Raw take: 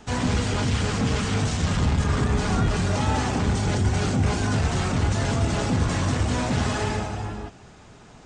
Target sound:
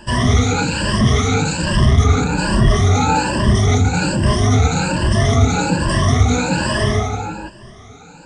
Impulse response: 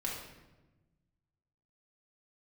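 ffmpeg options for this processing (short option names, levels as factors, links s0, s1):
-af "afftfilt=real='re*pow(10,23/40*sin(2*PI*(1.3*log(max(b,1)*sr/1024/100)/log(2)-(1.2)*(pts-256)/sr)))':imag='im*pow(10,23/40*sin(2*PI*(1.3*log(max(b,1)*sr/1024/100)/log(2)-(1.2)*(pts-256)/sr)))':win_size=1024:overlap=0.75,volume=1.41"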